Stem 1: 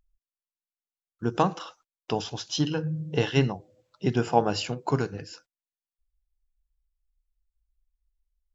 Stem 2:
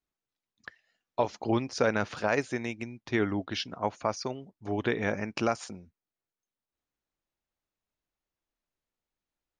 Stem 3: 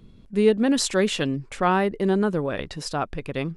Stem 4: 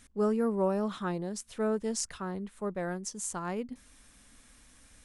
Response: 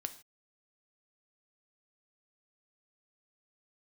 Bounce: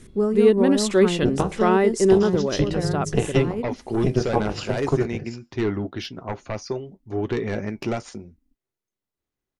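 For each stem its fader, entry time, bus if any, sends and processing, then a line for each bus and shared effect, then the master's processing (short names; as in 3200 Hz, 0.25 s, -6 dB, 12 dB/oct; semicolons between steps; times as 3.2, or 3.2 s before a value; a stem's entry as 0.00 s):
+1.5 dB, 0.00 s, bus A, send -9.5 dB, AM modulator 260 Hz, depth 75%
-6.0 dB, 2.45 s, no bus, no send, sine folder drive 6 dB, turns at -13.5 dBFS; flange 0.83 Hz, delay 6.6 ms, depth 3.9 ms, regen -60%
-2.0 dB, 0.00 s, no bus, no send, tone controls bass -6 dB, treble 0 dB
+2.5 dB, 0.00 s, bus A, send -11.5 dB, dry
bus A: 0.0 dB, transient shaper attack +3 dB, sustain -6 dB; compressor 2.5:1, threshold -30 dBFS, peak gain reduction 11.5 dB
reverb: on, pre-delay 3 ms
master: low shelf 370 Hz +8 dB; small resonant body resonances 380/2000 Hz, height 7 dB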